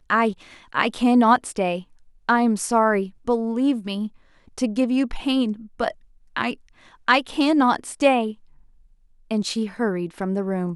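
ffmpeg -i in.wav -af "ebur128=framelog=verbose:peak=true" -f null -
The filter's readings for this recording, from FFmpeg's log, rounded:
Integrated loudness:
  I:         -22.2 LUFS
  Threshold: -32.9 LUFS
Loudness range:
  LRA:         4.0 LU
  Threshold: -42.9 LUFS
  LRA low:   -25.0 LUFS
  LRA high:  -21.0 LUFS
True peak:
  Peak:       -2.1 dBFS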